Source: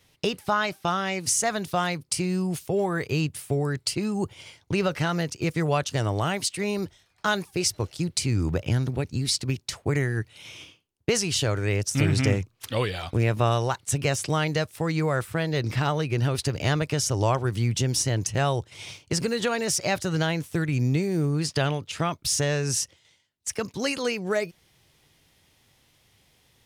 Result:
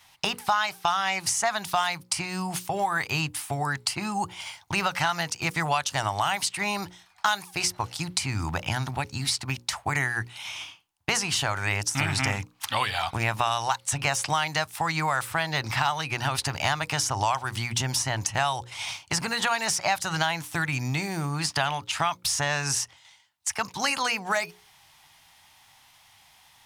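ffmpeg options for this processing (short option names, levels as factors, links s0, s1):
-filter_complex "[0:a]asettb=1/sr,asplit=3[s0][s1][s2];[s0]atrim=end=4.404[s3];[s1]atrim=start=4.4:end=4.85,asetpts=PTS-STARTPTS,afade=t=in:d=0.004:c=qsin,afade=t=out:st=0.446:d=0.004:c=qsin,highshelf=f=10000:g=6.5[s4];[s2]atrim=start=4.846[s5];[s3][s4]acrossfade=d=0.004:c1=hsin:c2=qsin[s6];[s6][s5]acrossfade=d=0.004:c1=qsin:c2=hsin,lowshelf=f=620:t=q:w=3:g=-10,bandreject=f=60:t=h:w=6,bandreject=f=120:t=h:w=6,bandreject=f=180:t=h:w=6,bandreject=f=240:t=h:w=6,bandreject=f=300:t=h:w=6,bandreject=f=360:t=h:w=6,bandreject=f=420:t=h:w=6,bandreject=f=480:t=h:w=6,bandreject=f=540:t=h:w=6,acrossover=split=2300|7600[s7][s8][s9];[s7]acompressor=threshold=0.0316:ratio=4[s10];[s8]acompressor=threshold=0.0158:ratio=4[s11];[s9]acompressor=threshold=0.01:ratio=4[s12];[s10][s11][s12]amix=inputs=3:normalize=0,volume=2.11"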